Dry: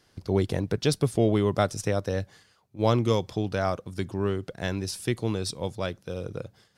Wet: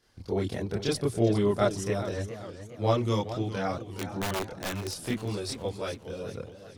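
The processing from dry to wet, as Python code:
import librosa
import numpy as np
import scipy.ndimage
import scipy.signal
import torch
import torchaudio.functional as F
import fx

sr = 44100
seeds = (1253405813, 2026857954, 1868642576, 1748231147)

y = fx.chorus_voices(x, sr, voices=6, hz=0.5, base_ms=27, depth_ms=2.7, mix_pct=60)
y = fx.overflow_wrap(y, sr, gain_db=25.0, at=(3.82, 4.99))
y = fx.echo_warbled(y, sr, ms=413, feedback_pct=47, rate_hz=2.8, cents=151, wet_db=-12)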